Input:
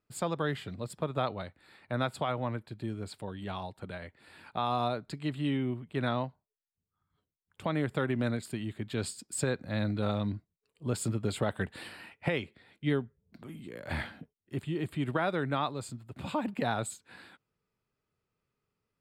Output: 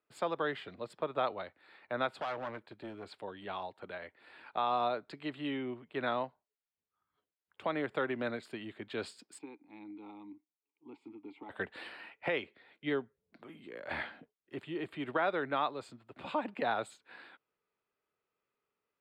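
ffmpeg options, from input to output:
ffmpeg -i in.wav -filter_complex "[0:a]asettb=1/sr,asplit=3[link_01][link_02][link_03];[link_01]atrim=end=2.104[link_04];[link_02]atrim=start=2.1:end=3.07,asetpts=PTS-STARTPTS,afade=type=in:duration=0.004:curve=qsin,afade=type=out:start_time=0.966:duration=0.004:curve=qsin,volume=32dB,asoftclip=hard,volume=-32dB[link_05];[link_03]atrim=start=3.066[link_06];[link_04][link_05]acrossfade=duration=0.004:curve1=hsin:curve2=qsin[link_07];[link_07][link_06]acrossfade=duration=0.004:curve1=qsin:curve2=hsin,asplit=3[link_08][link_09][link_10];[link_08]afade=type=out:start_time=9.37:duration=0.02[link_11];[link_09]asplit=3[link_12][link_13][link_14];[link_12]bandpass=frequency=300:width_type=q:width=8,volume=0dB[link_15];[link_13]bandpass=frequency=870:width_type=q:width=8,volume=-6dB[link_16];[link_14]bandpass=frequency=2240:width_type=q:width=8,volume=-9dB[link_17];[link_15][link_16][link_17]amix=inputs=3:normalize=0,afade=type=in:start_time=9.37:duration=0.02,afade=type=out:start_time=11.49:duration=0.02[link_18];[link_10]afade=type=in:start_time=11.49:duration=0.02[link_19];[link_11][link_18][link_19]amix=inputs=3:normalize=0,acrossover=split=300 4100:gain=0.126 1 0.126[link_20][link_21][link_22];[link_20][link_21][link_22]amix=inputs=3:normalize=0" out.wav

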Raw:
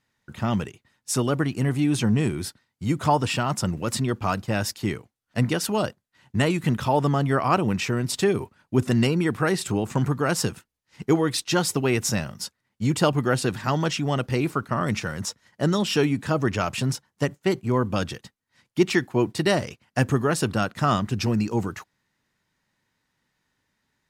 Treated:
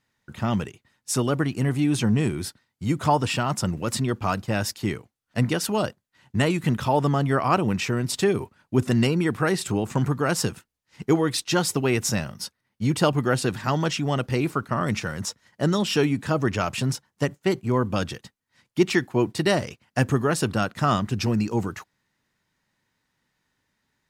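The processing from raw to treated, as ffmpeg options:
ffmpeg -i in.wav -filter_complex "[0:a]asettb=1/sr,asplit=3[link_01][link_02][link_03];[link_01]atrim=end=12.304[link_04];[link_02]atrim=start=12.3:end=12.99,asetpts=PTS-STARTPTS,afade=type=in:duration=0.004:curve=qsin,afade=type=out:start_time=0.686:duration=0.004:curve=qsin,bandreject=frequency=7300:width=6.7[link_05];[link_03]atrim=start=12.986[link_06];[link_04][link_05]acrossfade=duration=0.004:curve1=hsin:curve2=qsin[link_07];[link_07][link_06]acrossfade=duration=0.004:curve1=qsin:curve2=hsin" out.wav

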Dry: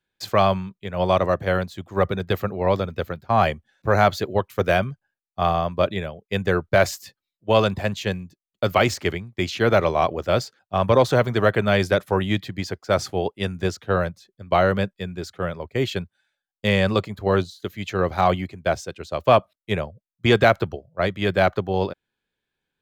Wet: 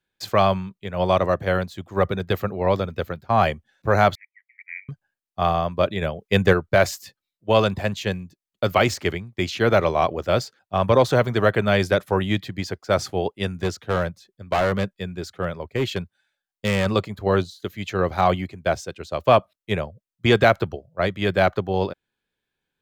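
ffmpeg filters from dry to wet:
ffmpeg -i in.wav -filter_complex "[0:a]asettb=1/sr,asplit=3[link_01][link_02][link_03];[link_01]atrim=end=4.154[link_04];[link_02]atrim=start=4.15:end=4.89,asetpts=PTS-STARTPTS,afade=type=in:duration=0.004:curve=qsin,afade=type=out:start_time=0.736:duration=0.004:curve=qsin,asuperpass=centerf=2100:order=8:qfactor=4.5[link_05];[link_03]atrim=start=4.886[link_06];[link_04][link_05]acrossfade=duration=0.004:curve1=hsin:curve2=qsin[link_07];[link_07][link_06]acrossfade=duration=0.004:curve1=qsin:curve2=hsin,asplit=3[link_08][link_09][link_10];[link_08]afade=type=out:start_time=6.01:duration=0.02[link_11];[link_09]acontrast=60,afade=type=in:start_time=6.01:duration=0.02,afade=type=out:start_time=6.52:duration=0.02[link_12];[link_10]afade=type=in:start_time=6.52:duration=0.02[link_13];[link_11][link_12][link_13]amix=inputs=3:normalize=0,asettb=1/sr,asplit=3[link_14][link_15][link_16];[link_14]atrim=end=13.534[link_17];[link_15]atrim=start=13.53:end=16.86,asetpts=PTS-STARTPTS,afade=type=in:duration=0.004:curve=qsin,afade=type=out:start_time=3.326:duration=0.004:curve=qsin,volume=16.5dB,asoftclip=hard,volume=-16.5dB[link_18];[link_16]atrim=start=16.856[link_19];[link_17][link_18]acrossfade=duration=0.004:curve1=hsin:curve2=qsin[link_20];[link_20][link_19]acrossfade=duration=0.004:curve1=qsin:curve2=hsin" out.wav

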